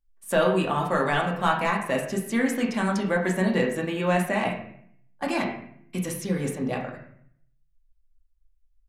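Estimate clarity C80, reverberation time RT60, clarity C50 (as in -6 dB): 9.0 dB, 0.60 s, 6.0 dB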